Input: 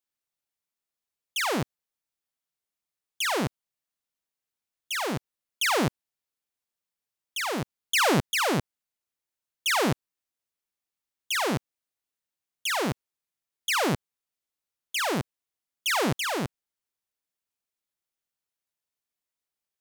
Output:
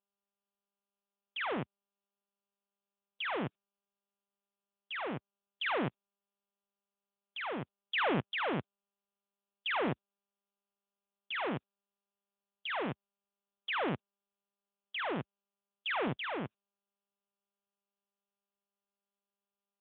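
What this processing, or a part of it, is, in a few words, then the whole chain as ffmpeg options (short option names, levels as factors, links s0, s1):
mobile call with aggressive noise cancelling: -filter_complex "[0:a]asplit=3[s0][s1][s2];[s0]afade=t=out:st=12.71:d=0.02[s3];[s1]highshelf=f=9100:g=5,afade=t=in:st=12.71:d=0.02,afade=t=out:st=13.71:d=0.02[s4];[s2]afade=t=in:st=13.71:d=0.02[s5];[s3][s4][s5]amix=inputs=3:normalize=0,highpass=f=130:p=1,afftdn=nr=22:nf=-45,volume=0.447" -ar 8000 -c:a libopencore_amrnb -b:a 10200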